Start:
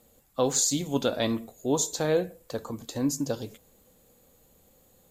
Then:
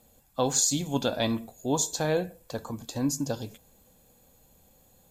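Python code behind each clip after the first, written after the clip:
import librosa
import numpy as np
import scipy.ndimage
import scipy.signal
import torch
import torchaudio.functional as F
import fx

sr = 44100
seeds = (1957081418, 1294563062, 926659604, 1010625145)

y = fx.notch(x, sr, hz=1800.0, q=17.0)
y = y + 0.34 * np.pad(y, (int(1.2 * sr / 1000.0), 0))[:len(y)]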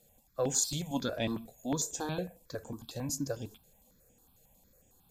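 y = fx.phaser_held(x, sr, hz=11.0, low_hz=270.0, high_hz=4200.0)
y = y * 10.0 ** (-3.0 / 20.0)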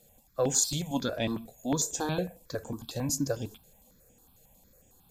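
y = fx.rider(x, sr, range_db=4, speed_s=2.0)
y = y * 10.0 ** (3.0 / 20.0)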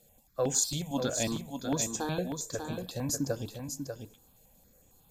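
y = x + 10.0 ** (-6.5 / 20.0) * np.pad(x, (int(593 * sr / 1000.0), 0))[:len(x)]
y = y * 10.0 ** (-2.0 / 20.0)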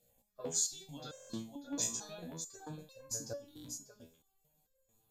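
y = fx.dynamic_eq(x, sr, hz=5600.0, q=0.84, threshold_db=-46.0, ratio=4.0, max_db=7)
y = fx.buffer_glitch(y, sr, at_s=(1.11, 3.46), block=1024, repeats=7)
y = fx.resonator_held(y, sr, hz=4.5, low_hz=60.0, high_hz=530.0)
y = y * 10.0 ** (-1.5 / 20.0)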